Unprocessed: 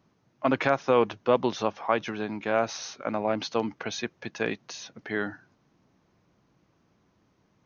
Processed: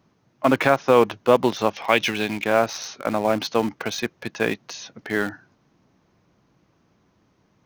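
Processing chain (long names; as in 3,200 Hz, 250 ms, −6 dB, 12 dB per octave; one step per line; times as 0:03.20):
0:01.73–0:02.44: high shelf with overshoot 1,800 Hz +8.5 dB, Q 1.5
in parallel at −11 dB: bit reduction 5 bits
on the sum: level +4 dB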